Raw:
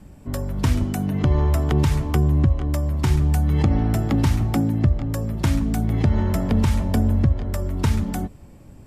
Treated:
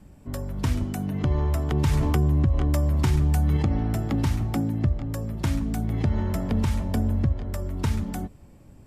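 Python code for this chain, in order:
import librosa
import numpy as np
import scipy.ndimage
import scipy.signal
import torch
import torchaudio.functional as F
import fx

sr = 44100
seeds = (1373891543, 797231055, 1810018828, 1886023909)

y = fx.env_flatten(x, sr, amount_pct=70, at=(1.84, 3.57))
y = y * librosa.db_to_amplitude(-5.0)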